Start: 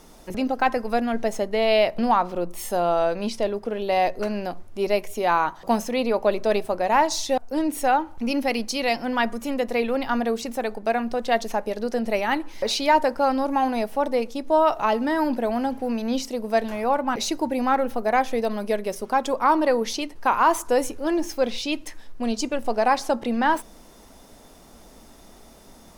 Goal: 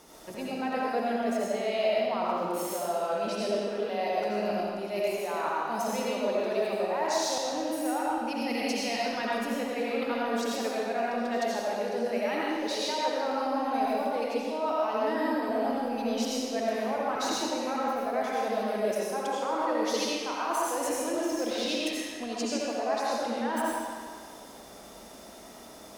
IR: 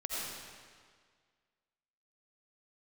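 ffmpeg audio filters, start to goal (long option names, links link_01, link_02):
-filter_complex "[0:a]highpass=60,bass=frequency=250:gain=-7,treble=frequency=4000:gain=0,areverse,acompressor=threshold=-30dB:ratio=6,areverse[link_01];[1:a]atrim=start_sample=2205[link_02];[link_01][link_02]afir=irnorm=-1:irlink=0"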